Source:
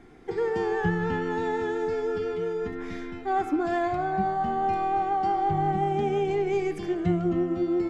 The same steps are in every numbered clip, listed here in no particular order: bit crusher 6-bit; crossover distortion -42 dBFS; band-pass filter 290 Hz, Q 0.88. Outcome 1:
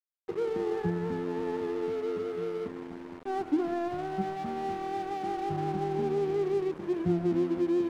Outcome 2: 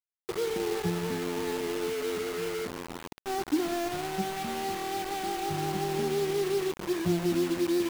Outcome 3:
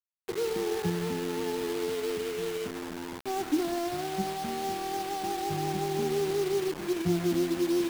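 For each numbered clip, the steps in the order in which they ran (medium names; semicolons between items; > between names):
bit crusher > band-pass filter > crossover distortion; band-pass filter > crossover distortion > bit crusher; band-pass filter > bit crusher > crossover distortion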